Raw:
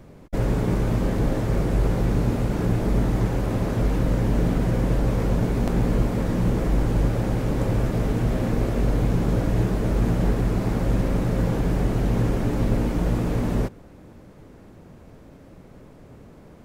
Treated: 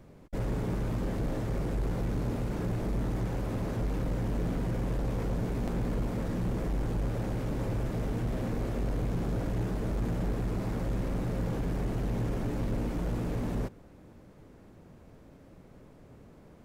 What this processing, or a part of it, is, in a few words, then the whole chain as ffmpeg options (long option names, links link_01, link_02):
saturation between pre-emphasis and de-emphasis: -af "highshelf=frequency=5700:gain=7,asoftclip=type=tanh:threshold=-17.5dB,highshelf=frequency=5700:gain=-7,volume=-7dB"